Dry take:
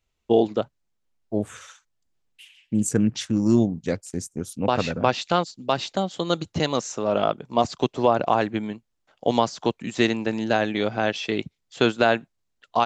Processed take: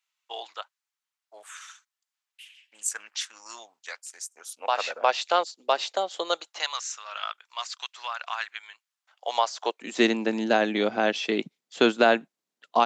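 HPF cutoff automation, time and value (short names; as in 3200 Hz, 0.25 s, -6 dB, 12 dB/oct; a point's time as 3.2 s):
HPF 24 dB/oct
4.1 s 1000 Hz
5.39 s 450 Hz
6.24 s 450 Hz
6.84 s 1300 Hz
8.65 s 1300 Hz
9.61 s 560 Hz
10.06 s 200 Hz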